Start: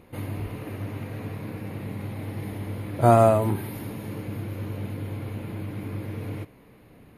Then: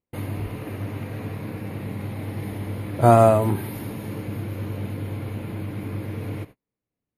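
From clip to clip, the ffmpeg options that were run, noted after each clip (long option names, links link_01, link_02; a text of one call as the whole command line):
ffmpeg -i in.wav -af "agate=range=-39dB:threshold=-42dB:ratio=16:detection=peak,volume=2.5dB" out.wav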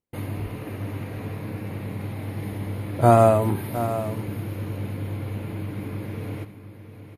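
ffmpeg -i in.wav -af "aecho=1:1:710:0.266,volume=-1dB" out.wav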